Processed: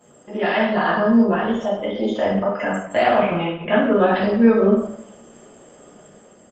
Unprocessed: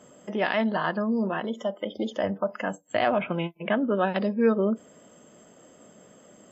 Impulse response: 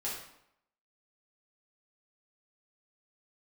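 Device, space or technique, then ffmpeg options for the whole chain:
speakerphone in a meeting room: -filter_complex "[1:a]atrim=start_sample=2205[s0];[0:a][s0]afir=irnorm=-1:irlink=0,asplit=2[s1][s2];[s2]adelay=100,highpass=300,lowpass=3400,asoftclip=type=hard:threshold=0.141,volume=0.0501[s3];[s1][s3]amix=inputs=2:normalize=0,dynaudnorm=f=100:g=11:m=1.78,volume=1.12" -ar 48000 -c:a libopus -b:a 20k

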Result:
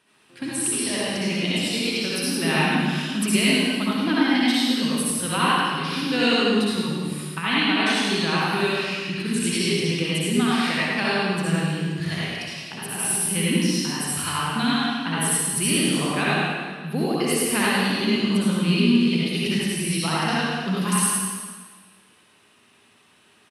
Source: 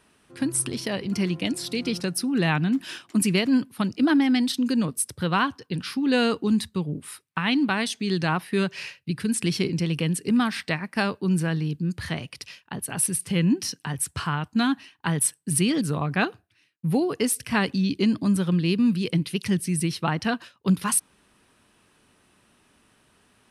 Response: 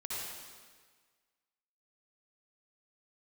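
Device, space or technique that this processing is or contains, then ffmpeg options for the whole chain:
PA in a hall: -filter_complex "[0:a]highpass=120,equalizer=f=3000:t=o:w=1.3:g=5.5,aecho=1:1:105:0.501[s0];[1:a]atrim=start_sample=2205[s1];[s0][s1]afir=irnorm=-1:irlink=0"

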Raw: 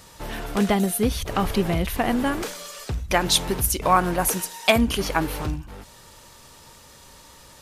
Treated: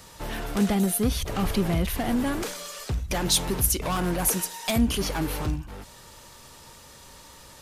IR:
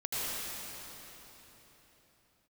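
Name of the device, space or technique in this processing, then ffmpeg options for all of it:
one-band saturation: -filter_complex "[0:a]acrossover=split=260|4500[s0][s1][s2];[s1]asoftclip=type=tanh:threshold=0.0473[s3];[s0][s3][s2]amix=inputs=3:normalize=0"

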